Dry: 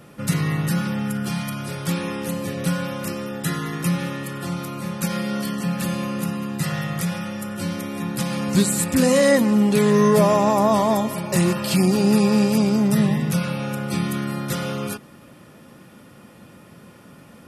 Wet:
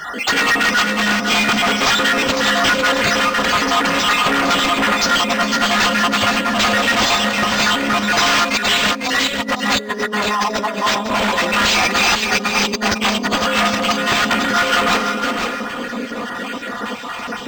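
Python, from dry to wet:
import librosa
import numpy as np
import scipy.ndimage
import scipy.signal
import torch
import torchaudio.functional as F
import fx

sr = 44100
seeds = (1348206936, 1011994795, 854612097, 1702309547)

p1 = fx.spec_dropout(x, sr, seeds[0], share_pct=57)
p2 = 10.0 ** (-11.5 / 20.0) * np.tanh(p1 / 10.0 ** (-11.5 / 20.0))
p3 = fx.brickwall_highpass(p2, sr, low_hz=200.0)
p4 = fx.high_shelf(p3, sr, hz=8800.0, db=-7.5)
p5 = p4 + 0.76 * np.pad(p4, (int(4.2 * sr / 1000.0), 0))[:len(p4)]
p6 = fx.rev_schroeder(p5, sr, rt60_s=1.7, comb_ms=26, drr_db=11.5)
p7 = fx.over_compress(p6, sr, threshold_db=-34.0, ratio=-1.0)
p8 = fx.fold_sine(p7, sr, drive_db=19, ceiling_db=-9.0)
p9 = fx.low_shelf(p8, sr, hz=490.0, db=-11.5)
p10 = p9 + fx.echo_single(p9, sr, ms=502, db=-6.0, dry=0)
y = np.interp(np.arange(len(p10)), np.arange(len(p10))[::4], p10[::4])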